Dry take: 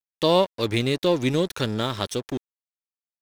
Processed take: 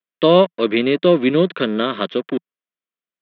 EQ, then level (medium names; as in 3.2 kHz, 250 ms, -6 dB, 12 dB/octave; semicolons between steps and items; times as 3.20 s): Chebyshev band-pass 170–3400 Hz, order 4; Butterworth band-stop 840 Hz, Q 4; distance through air 120 m; +8.5 dB